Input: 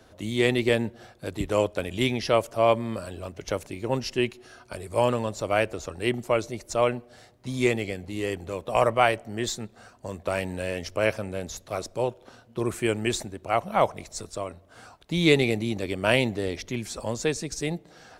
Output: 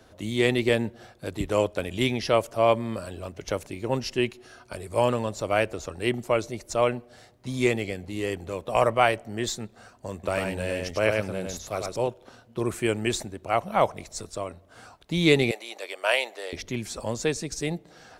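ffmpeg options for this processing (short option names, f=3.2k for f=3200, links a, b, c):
-filter_complex "[0:a]asettb=1/sr,asplit=3[a][b][c];[a]atrim=end=10.134[d];[b]atrim=start=10.13:end=12.08,asetpts=PTS-STARTPTS,afade=t=in:d=0.004:c=qsin,afade=t=out:st=1.946:d=0.004:c=qsin,aecho=1:1:101:0.631,atrim=end_sample=85995[e];[c]atrim=start=12.076[f];[d][e]acrossfade=d=0.004:c1=hsin:c2=qsin[g];[g][f]acrossfade=d=0.004:c1=qsin:c2=hsin,asettb=1/sr,asplit=3[h][i][j];[h]atrim=end=15.514[k];[i]atrim=start=15.51:end=16.53,asetpts=PTS-STARTPTS,afade=t=in:d=0.004:c=qsin,afade=t=out:st=1.016:d=0.004:c=qsin,highpass=f=550:w=0.5412,highpass=f=550:w=1.3066[l];[j]atrim=start=16.526[m];[k][l]acrossfade=d=0.004:c1=hsin:c2=qsin[n];[n][m]acrossfade=d=0.004:c1=qsin:c2=hsin"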